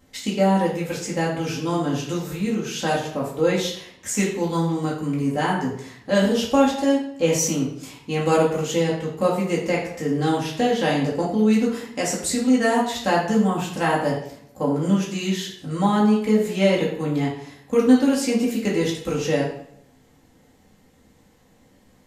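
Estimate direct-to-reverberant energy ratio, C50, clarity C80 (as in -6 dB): -5.5 dB, 4.5 dB, 7.5 dB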